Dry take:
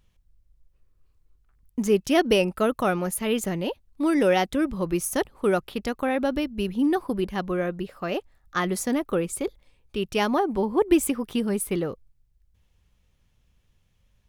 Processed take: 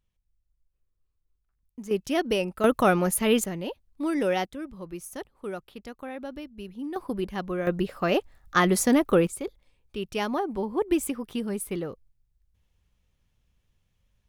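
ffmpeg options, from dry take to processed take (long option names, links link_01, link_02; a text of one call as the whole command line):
ffmpeg -i in.wav -af "asetnsamples=nb_out_samples=441:pad=0,asendcmd='1.91 volume volume -5.5dB;2.64 volume volume 3dB;3.44 volume volume -5dB;4.45 volume volume -12.5dB;6.96 volume volume -3.5dB;7.67 volume volume 4.5dB;9.27 volume volume -5dB',volume=-13.5dB" out.wav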